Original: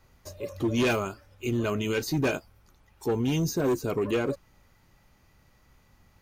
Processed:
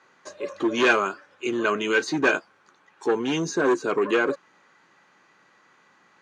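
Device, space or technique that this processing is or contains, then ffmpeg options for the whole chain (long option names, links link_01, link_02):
television speaker: -af "highpass=frequency=220:width=0.5412,highpass=frequency=220:width=1.3066,equalizer=frequency=240:width_type=q:width=4:gain=-7,equalizer=frequency=620:width_type=q:width=4:gain=-3,equalizer=frequency=1100:width_type=q:width=4:gain=5,equalizer=frequency=1600:width_type=q:width=4:gain=9,equalizer=frequency=5200:width_type=q:width=4:gain=-7,lowpass=frequency=6900:width=0.5412,lowpass=frequency=6900:width=1.3066,volume=5.5dB"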